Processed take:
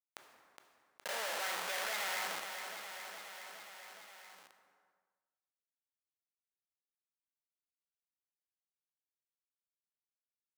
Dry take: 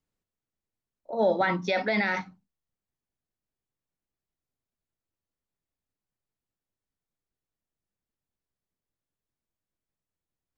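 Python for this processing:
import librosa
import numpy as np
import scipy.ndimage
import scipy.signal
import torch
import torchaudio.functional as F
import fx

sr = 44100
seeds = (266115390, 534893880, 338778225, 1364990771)

p1 = fx.bin_compress(x, sr, power=0.4)
p2 = fx.add_hum(p1, sr, base_hz=50, snr_db=34)
p3 = fx.quant_companded(p2, sr, bits=4)
p4 = p2 + (p3 * 10.0 ** (-5.5 / 20.0))
p5 = fx.air_absorb(p4, sr, metres=130.0)
p6 = fx.schmitt(p5, sr, flips_db=-31.5)
p7 = scipy.signal.sosfilt(scipy.signal.butter(2, 950.0, 'highpass', fs=sr, output='sos'), p6)
p8 = fx.echo_feedback(p7, sr, ms=415, feedback_pct=52, wet_db=-14.0)
p9 = fx.rev_plate(p8, sr, seeds[0], rt60_s=1.2, hf_ratio=0.65, predelay_ms=0, drr_db=15.0)
p10 = fx.env_flatten(p9, sr, amount_pct=50)
y = p10 * 10.0 ** (-7.0 / 20.0)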